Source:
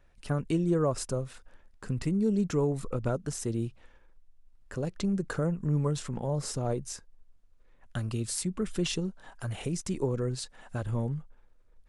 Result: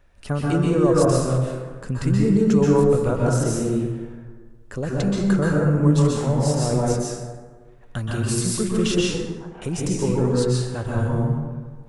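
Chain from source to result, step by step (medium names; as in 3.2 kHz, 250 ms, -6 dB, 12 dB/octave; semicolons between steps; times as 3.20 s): 9.01–9.62 s: ladder band-pass 1 kHz, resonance 45%; plate-style reverb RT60 1.5 s, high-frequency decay 0.45×, pre-delay 115 ms, DRR -4.5 dB; trim +5 dB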